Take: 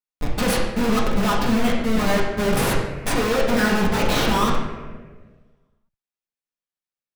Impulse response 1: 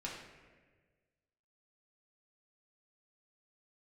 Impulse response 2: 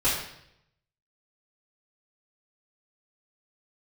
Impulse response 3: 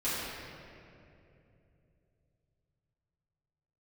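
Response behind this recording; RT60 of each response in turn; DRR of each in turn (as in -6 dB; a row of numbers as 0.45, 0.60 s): 1; 1.5, 0.75, 2.8 s; -5.0, -13.5, -13.0 dB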